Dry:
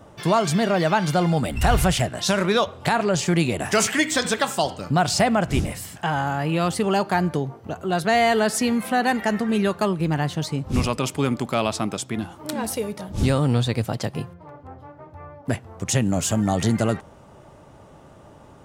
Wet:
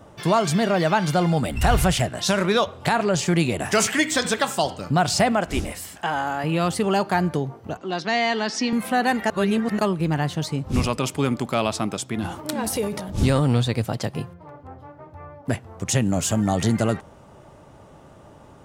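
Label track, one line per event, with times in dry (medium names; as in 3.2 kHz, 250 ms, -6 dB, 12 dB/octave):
5.320000	6.440000	peaking EQ 130 Hz -14.5 dB
7.770000	8.730000	cabinet simulation 260–5800 Hz, peaks and dips at 280 Hz +5 dB, 430 Hz -6 dB, 640 Hz -7 dB, 1.4 kHz -6 dB, 5.5 kHz +7 dB
9.300000	9.790000	reverse
12.190000	13.620000	transient shaper attack +2 dB, sustain +9 dB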